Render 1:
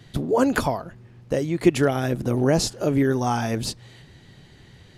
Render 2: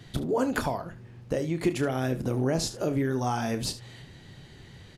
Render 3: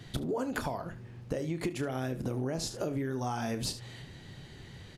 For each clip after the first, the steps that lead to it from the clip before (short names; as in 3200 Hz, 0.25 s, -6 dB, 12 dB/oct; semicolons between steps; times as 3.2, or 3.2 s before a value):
compressor 2:1, threshold -29 dBFS, peak gain reduction 10 dB; on a send: early reflections 31 ms -11.5 dB, 73 ms -15 dB
compressor, threshold -30 dBFS, peak gain reduction 10 dB